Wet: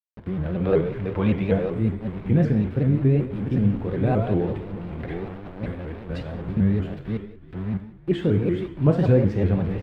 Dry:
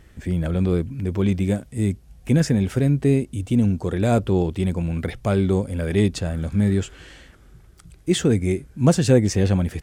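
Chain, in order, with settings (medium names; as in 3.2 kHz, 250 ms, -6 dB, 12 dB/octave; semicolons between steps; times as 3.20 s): chunks repeated in reverse 598 ms, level -7.5 dB; 0.65–1.71 s: time-frequency box 420–7200 Hz +9 dB; 4.49–6.57 s: compressor with a negative ratio -29 dBFS, ratio -1; small samples zeroed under -31.5 dBFS; distance through air 480 m; frequency-shifting echo 334 ms, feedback 54%, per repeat -56 Hz, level -21 dB; gated-style reverb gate 230 ms falling, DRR 4.5 dB; vibrato with a chosen wave saw up 5.3 Hz, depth 160 cents; trim -3 dB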